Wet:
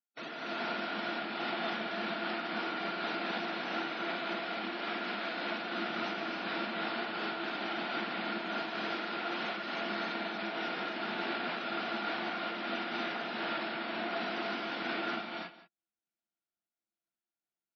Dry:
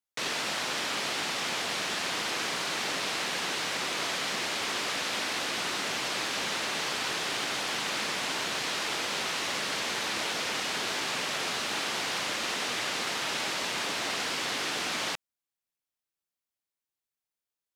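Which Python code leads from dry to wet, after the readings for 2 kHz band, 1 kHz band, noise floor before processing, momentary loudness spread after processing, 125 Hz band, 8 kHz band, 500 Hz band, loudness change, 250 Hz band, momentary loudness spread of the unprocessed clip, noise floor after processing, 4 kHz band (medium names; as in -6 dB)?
-5.0 dB, -2.0 dB, under -85 dBFS, 1 LU, -4.0 dB, under -30 dB, -1.0 dB, -6.0 dB, +2.5 dB, 0 LU, under -85 dBFS, -10.0 dB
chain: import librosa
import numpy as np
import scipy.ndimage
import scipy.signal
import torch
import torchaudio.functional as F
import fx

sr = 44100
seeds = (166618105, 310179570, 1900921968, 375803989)

p1 = fx.high_shelf(x, sr, hz=6300.0, db=-8.0)
p2 = fx.spec_gate(p1, sr, threshold_db=-10, keep='strong')
p3 = fx.low_shelf(p2, sr, hz=320.0, db=-4.0)
p4 = fx.notch(p3, sr, hz=390.0, q=12.0)
p5 = fx.small_body(p4, sr, hz=(220.0, 330.0, 670.0, 1400.0), ring_ms=45, db=13)
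p6 = p5 + fx.echo_single(p5, sr, ms=172, db=-14.0, dry=0)
p7 = fx.rev_gated(p6, sr, seeds[0], gate_ms=360, shape='rising', drr_db=-3.0)
p8 = fx.am_noise(p7, sr, seeds[1], hz=5.7, depth_pct=55)
y = p8 * librosa.db_to_amplitude(-8.0)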